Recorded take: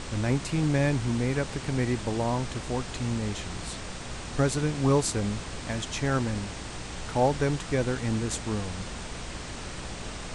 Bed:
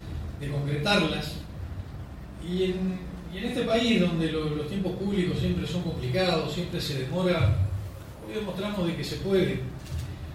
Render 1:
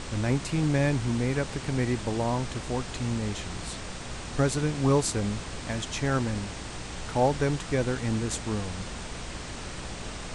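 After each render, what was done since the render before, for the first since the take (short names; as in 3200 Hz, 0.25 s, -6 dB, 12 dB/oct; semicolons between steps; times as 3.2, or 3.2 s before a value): nothing audible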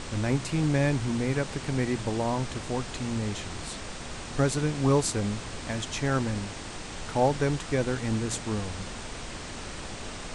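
de-hum 60 Hz, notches 3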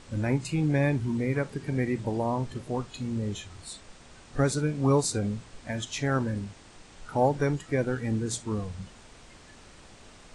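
noise print and reduce 13 dB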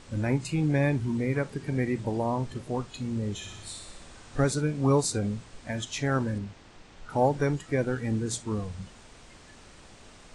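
3.35–4.45 flutter echo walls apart 10.5 m, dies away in 0.92 s; 6.38–7.1 air absorption 78 m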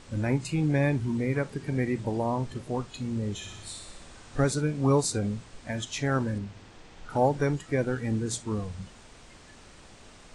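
6.48–7.18 flutter echo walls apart 10.9 m, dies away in 0.63 s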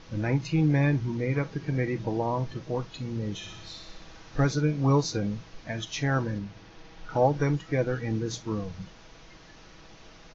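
steep low-pass 6500 Hz 96 dB/oct; comb 6.2 ms, depth 45%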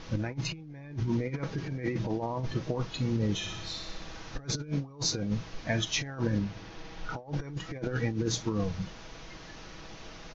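negative-ratio compressor -31 dBFS, ratio -0.5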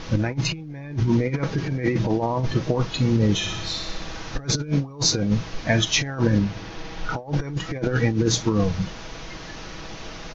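gain +9.5 dB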